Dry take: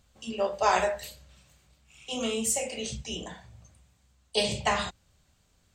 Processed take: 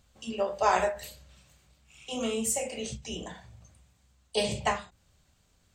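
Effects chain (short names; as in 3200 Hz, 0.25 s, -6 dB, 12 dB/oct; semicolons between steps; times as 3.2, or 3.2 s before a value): dynamic EQ 4100 Hz, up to -5 dB, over -44 dBFS, Q 0.83; ending taper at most 170 dB/s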